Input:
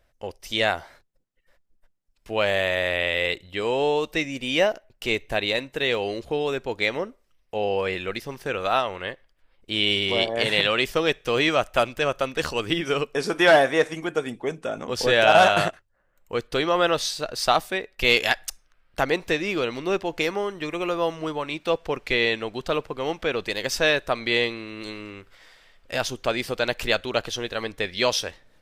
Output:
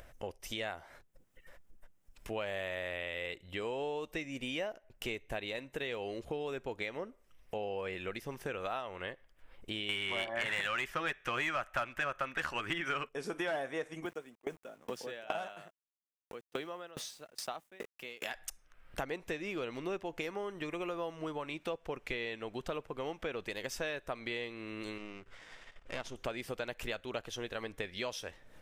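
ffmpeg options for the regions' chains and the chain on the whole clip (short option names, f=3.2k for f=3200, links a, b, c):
-filter_complex "[0:a]asettb=1/sr,asplit=3[a][b][c];[a]atrim=end=9.894[d];[b]atrim=start=9.89:end=13.09,asetpts=PTS-STARTPTS,afade=t=in:d=0.004:c=qsin,afade=t=out:st=3.196:d=0.004:c=qsin,equalizer=f=1.6k:t=o:w=1.7:g=14.5,acontrast=49,bandreject=f=460:w=5.7[e];[c]atrim=start=13.086[f];[d][e]acrossfade=d=0.004:c1=hsin:c2=qsin[g];[g][f]acrossfade=d=0.004:c1=qsin:c2=hsin,asettb=1/sr,asplit=3[h][i][j];[h]atrim=end=14.054[k];[i]atrim=start=14.05:end=18.34,asetpts=PTS-STARTPTS,afade=t=in:d=0.004:c=qsin,afade=t=out:st=4.286:d=0.004:c=qsin,highpass=f=140:w=0.5412,highpass=f=140:w=1.3066,aeval=exprs='val(0)*gte(abs(val(0)),0.0119)':c=same,aeval=exprs='val(0)*pow(10,-32*if(lt(mod(2.4*n/s,1),2*abs(2.4)/1000),1-mod(2.4*n/s,1)/(2*abs(2.4)/1000),(mod(2.4*n/s,1)-2*abs(2.4)/1000)/(1-2*abs(2.4)/1000))/20)':c=same[l];[j]atrim=start=18.336[m];[k][l]acrossfade=d=0.004:c1=hsin:c2=qsin[n];[n][m]acrossfade=d=0.004:c1=qsin:c2=hsin,asettb=1/sr,asplit=3[o][p][q];[o]atrim=end=24.984[r];[p]atrim=start=24.98:end=26.16,asetpts=PTS-STARTPTS,afade=t=in:d=0.004:c=qsin,afade=t=out:st=1.176:d=0.004:c=qsin,aeval=exprs='if(lt(val(0),0),0.251*val(0),val(0))':c=same,lowpass=7.2k[s];[q]atrim=start=26.156[t];[r][s]acrossfade=d=0.004:c1=hsin:c2=qsin[u];[u][t]acrossfade=d=0.004:c1=qsin:c2=hsin,acompressor=threshold=-31dB:ratio=4,equalizer=f=4.4k:w=2.2:g=-7,acompressor=mode=upward:threshold=-36dB:ratio=2.5,volume=-5dB"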